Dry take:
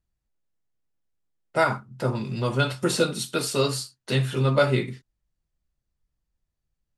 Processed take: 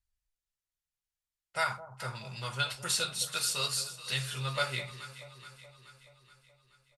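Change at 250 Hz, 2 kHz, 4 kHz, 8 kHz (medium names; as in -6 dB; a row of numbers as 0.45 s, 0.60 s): -21.0 dB, -5.0 dB, -1.5 dB, 0.0 dB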